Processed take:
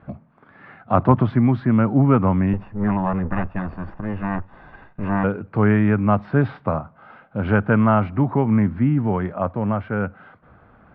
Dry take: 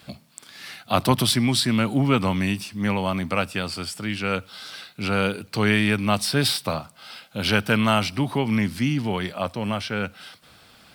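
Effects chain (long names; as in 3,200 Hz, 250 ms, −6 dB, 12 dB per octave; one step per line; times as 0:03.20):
0:02.53–0:05.24: lower of the sound and its delayed copy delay 1.1 ms
low-pass filter 1,500 Hz 24 dB per octave
low-shelf EQ 83 Hz +8.5 dB
level +3.5 dB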